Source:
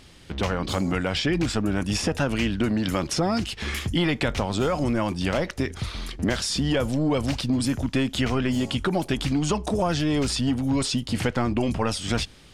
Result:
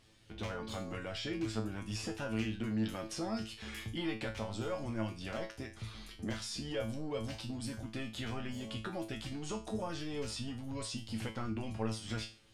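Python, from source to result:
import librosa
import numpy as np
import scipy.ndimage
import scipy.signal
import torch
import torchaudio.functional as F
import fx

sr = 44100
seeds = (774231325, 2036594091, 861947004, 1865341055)

y = fx.comb_fb(x, sr, f0_hz=110.0, decay_s=0.33, harmonics='all', damping=0.0, mix_pct=90)
y = y * 10.0 ** (-5.0 / 20.0)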